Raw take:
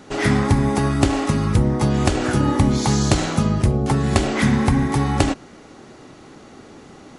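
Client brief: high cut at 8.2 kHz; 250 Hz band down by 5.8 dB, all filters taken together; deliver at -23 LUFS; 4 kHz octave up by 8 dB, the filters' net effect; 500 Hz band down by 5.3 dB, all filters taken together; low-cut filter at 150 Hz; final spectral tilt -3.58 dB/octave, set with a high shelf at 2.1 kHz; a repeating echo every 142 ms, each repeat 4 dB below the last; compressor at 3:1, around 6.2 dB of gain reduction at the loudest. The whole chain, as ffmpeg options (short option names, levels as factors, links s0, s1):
-af "highpass=150,lowpass=8200,equalizer=f=250:t=o:g=-5,equalizer=f=500:t=o:g=-5.5,highshelf=f=2100:g=5,equalizer=f=4000:t=o:g=5.5,acompressor=threshold=0.0794:ratio=3,aecho=1:1:142|284|426|568|710|852|994|1136|1278:0.631|0.398|0.25|0.158|0.0994|0.0626|0.0394|0.0249|0.0157"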